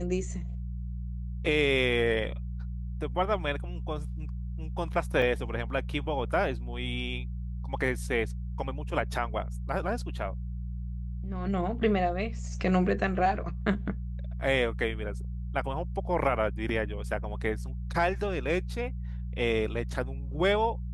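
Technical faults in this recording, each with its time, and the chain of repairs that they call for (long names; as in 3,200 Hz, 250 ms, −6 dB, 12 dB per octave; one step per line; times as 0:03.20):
mains hum 60 Hz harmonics 3 −35 dBFS
0:05.22: drop-out 2.5 ms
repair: hum removal 60 Hz, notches 3
repair the gap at 0:05.22, 2.5 ms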